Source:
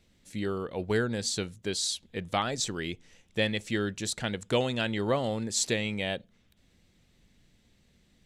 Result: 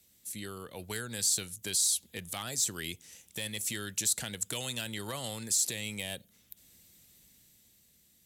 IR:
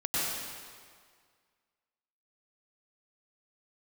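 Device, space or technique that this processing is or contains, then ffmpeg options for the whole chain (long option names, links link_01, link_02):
FM broadcast chain: -filter_complex "[0:a]highpass=52,dynaudnorm=framelen=180:gausssize=11:maxgain=5dB,acrossover=split=160|940|6400[link_01][link_02][link_03][link_04];[link_01]acompressor=threshold=-37dB:ratio=4[link_05];[link_02]acompressor=threshold=-36dB:ratio=4[link_06];[link_03]acompressor=threshold=-32dB:ratio=4[link_07];[link_04]acompressor=threshold=-34dB:ratio=4[link_08];[link_05][link_06][link_07][link_08]amix=inputs=4:normalize=0,aemphasis=mode=production:type=50fm,alimiter=limit=-18.5dB:level=0:latency=1:release=37,asoftclip=type=hard:threshold=-21.5dB,lowpass=frequency=15000:width=0.5412,lowpass=frequency=15000:width=1.3066,aemphasis=mode=production:type=50fm,volume=-7dB"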